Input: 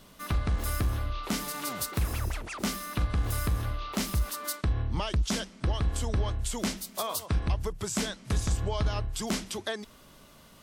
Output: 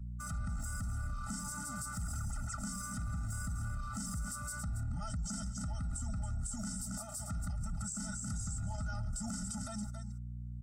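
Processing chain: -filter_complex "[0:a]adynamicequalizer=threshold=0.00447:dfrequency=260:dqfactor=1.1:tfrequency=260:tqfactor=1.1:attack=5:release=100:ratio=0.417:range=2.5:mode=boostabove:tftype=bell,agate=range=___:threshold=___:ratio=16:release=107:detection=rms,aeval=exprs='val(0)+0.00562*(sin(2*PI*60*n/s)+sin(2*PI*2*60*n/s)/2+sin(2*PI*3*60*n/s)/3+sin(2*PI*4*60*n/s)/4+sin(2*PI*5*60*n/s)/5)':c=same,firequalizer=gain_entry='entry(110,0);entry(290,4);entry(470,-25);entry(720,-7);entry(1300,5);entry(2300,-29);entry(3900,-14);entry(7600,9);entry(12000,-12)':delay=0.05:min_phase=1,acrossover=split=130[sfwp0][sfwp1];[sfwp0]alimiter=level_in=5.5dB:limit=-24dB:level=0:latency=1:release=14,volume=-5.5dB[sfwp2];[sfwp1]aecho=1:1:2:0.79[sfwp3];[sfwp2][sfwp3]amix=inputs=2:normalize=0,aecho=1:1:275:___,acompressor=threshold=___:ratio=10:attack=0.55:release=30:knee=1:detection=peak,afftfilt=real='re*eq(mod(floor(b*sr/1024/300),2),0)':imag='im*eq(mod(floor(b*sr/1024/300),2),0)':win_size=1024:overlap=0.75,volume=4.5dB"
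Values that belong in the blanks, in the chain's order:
-36dB, -45dB, 0.2, -38dB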